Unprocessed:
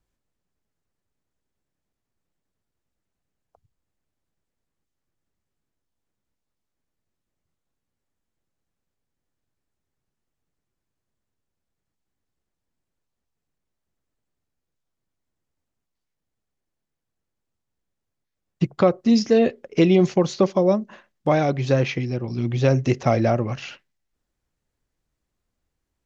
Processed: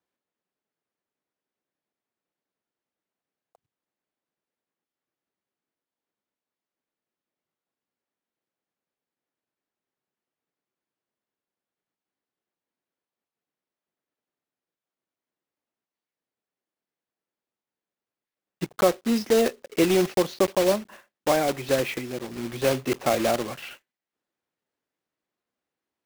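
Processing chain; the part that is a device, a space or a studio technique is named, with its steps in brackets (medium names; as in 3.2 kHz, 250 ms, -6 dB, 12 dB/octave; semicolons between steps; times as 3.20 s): early digital voice recorder (band-pass 280–3800 Hz; block-companded coder 3-bit); trim -2 dB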